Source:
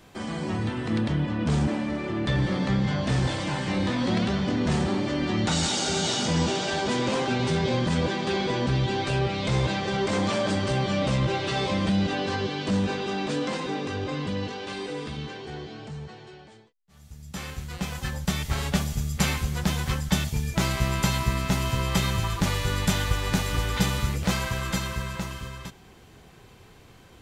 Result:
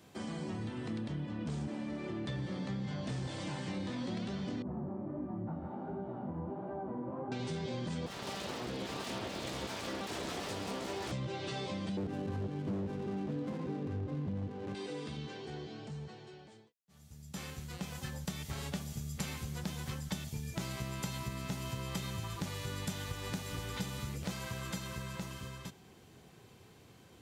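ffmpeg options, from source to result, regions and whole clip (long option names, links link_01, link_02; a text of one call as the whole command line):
ffmpeg -i in.wav -filter_complex "[0:a]asettb=1/sr,asplit=3[link_01][link_02][link_03];[link_01]atrim=end=4.624[link_04];[link_02]atrim=start=4.62:end=7.32,asetpts=PTS-STARTPTS,afade=type=in:duration=0.004:curve=qsin,afade=type=out:start_time=2.696:duration=0.004:curve=qsin,lowpass=frequency=1100:width=0.5412,lowpass=frequency=1100:width=1.3066,bandreject=frequency=450:width=5.4,flanger=delay=15:depth=7.2:speed=1.4[link_05];[link_03]atrim=start=7.316[link_06];[link_04][link_05]acrossfade=duration=0.004:curve1=hsin:curve2=qsin[link_07];[link_07][link_06]acrossfade=duration=0.004:curve1=qsin:curve2=hsin,asettb=1/sr,asplit=3[link_08][link_09][link_10];[link_08]atrim=end=8.064[link_11];[link_09]atrim=start=8.06:end=11.12,asetpts=PTS-STARTPTS,afade=type=in:duration=0.004:curve=qsin,afade=type=out:start_time=3.056:duration=0.004:curve=qsin,aecho=1:1:129|735:0.316|0.668,atrim=end_sample=134946,aeval=exprs='abs(val(0))':channel_layout=same[link_12];[link_10]atrim=start=11.116[link_13];[link_11][link_12]acrossfade=duration=0.004:curve1=hsin:curve2=qsin[link_14];[link_14][link_13]acrossfade=duration=0.004:curve1=qsin:curve2=hsin,asettb=1/sr,asplit=3[link_15][link_16][link_17];[link_15]atrim=end=11.974[link_18];[link_16]atrim=start=11.97:end=14.75,asetpts=PTS-STARTPTS,afade=type=in:duration=0.004:curve=qsin,afade=type=out:start_time=2.776:duration=0.004:curve=qsin,aemphasis=mode=reproduction:type=riaa,aeval=exprs='0.211*(abs(mod(val(0)/0.211+3,4)-2)-1)':channel_layout=same,adynamicsmooth=sensitivity=6.5:basefreq=510[link_19];[link_17]atrim=start=14.746[link_20];[link_18][link_19]acrossfade=duration=0.004:curve1=hsin:curve2=qsin[link_21];[link_21][link_20]acrossfade=duration=0.004:curve1=qsin:curve2=hsin,highpass=97,equalizer=frequency=1500:width=0.46:gain=-4.5,acompressor=threshold=-33dB:ratio=3,volume=-4.5dB" out.wav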